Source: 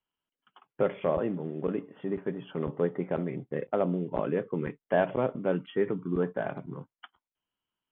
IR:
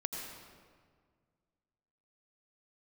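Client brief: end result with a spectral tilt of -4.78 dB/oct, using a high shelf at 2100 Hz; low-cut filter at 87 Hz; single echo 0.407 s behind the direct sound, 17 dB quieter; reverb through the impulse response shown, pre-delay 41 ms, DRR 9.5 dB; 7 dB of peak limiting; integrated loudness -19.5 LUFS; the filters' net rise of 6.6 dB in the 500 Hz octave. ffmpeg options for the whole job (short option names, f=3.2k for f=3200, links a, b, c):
-filter_complex "[0:a]highpass=87,equalizer=f=500:t=o:g=7.5,highshelf=f=2.1k:g=7.5,alimiter=limit=-14dB:level=0:latency=1,aecho=1:1:407:0.141,asplit=2[a][b];[1:a]atrim=start_sample=2205,adelay=41[c];[b][c]afir=irnorm=-1:irlink=0,volume=-11dB[d];[a][d]amix=inputs=2:normalize=0,volume=8dB"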